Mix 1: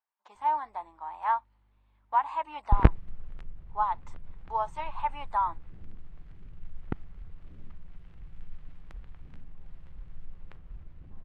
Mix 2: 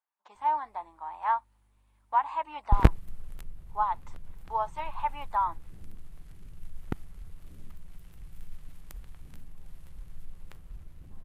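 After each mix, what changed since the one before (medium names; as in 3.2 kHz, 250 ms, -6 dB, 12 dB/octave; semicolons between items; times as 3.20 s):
background: remove low-pass 2.7 kHz 12 dB/octave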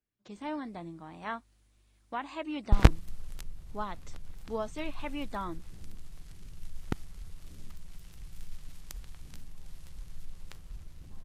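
speech: remove resonant high-pass 910 Hz, resonance Q 7.2; master: add peaking EQ 5.5 kHz +10.5 dB 1.7 oct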